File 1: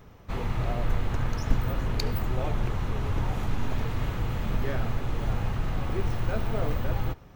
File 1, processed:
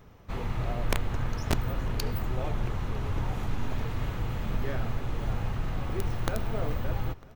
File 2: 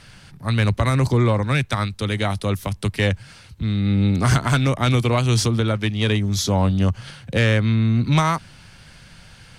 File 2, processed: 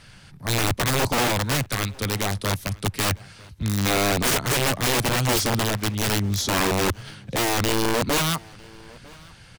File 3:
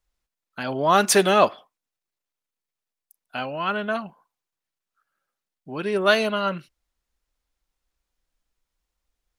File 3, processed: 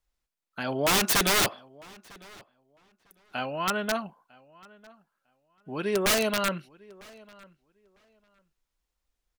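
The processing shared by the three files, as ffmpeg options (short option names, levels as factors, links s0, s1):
-filter_complex "[0:a]aeval=exprs='(mod(5.31*val(0)+1,2)-1)/5.31':c=same,asplit=2[s0][s1];[s1]adelay=951,lowpass=f=3800:p=1,volume=0.0668,asplit=2[s2][s3];[s3]adelay=951,lowpass=f=3800:p=1,volume=0.18[s4];[s0][s2][s4]amix=inputs=3:normalize=0,volume=0.75"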